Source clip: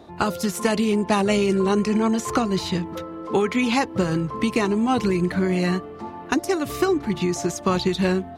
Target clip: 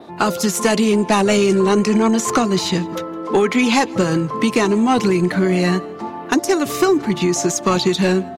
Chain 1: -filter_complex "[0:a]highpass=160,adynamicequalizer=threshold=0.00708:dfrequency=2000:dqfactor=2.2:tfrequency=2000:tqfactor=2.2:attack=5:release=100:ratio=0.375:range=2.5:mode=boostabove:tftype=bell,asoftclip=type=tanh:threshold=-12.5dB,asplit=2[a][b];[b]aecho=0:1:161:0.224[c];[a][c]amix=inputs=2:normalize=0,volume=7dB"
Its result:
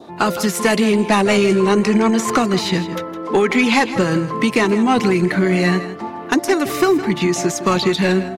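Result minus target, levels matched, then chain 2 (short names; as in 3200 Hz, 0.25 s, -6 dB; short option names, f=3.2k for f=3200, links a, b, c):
echo-to-direct +12 dB; 8000 Hz band -3.5 dB
-filter_complex "[0:a]highpass=160,adynamicequalizer=threshold=0.00708:dfrequency=6700:dqfactor=2.2:tfrequency=6700:tqfactor=2.2:attack=5:release=100:ratio=0.375:range=2.5:mode=boostabove:tftype=bell,asoftclip=type=tanh:threshold=-12.5dB,asplit=2[a][b];[b]aecho=0:1:161:0.0562[c];[a][c]amix=inputs=2:normalize=0,volume=7dB"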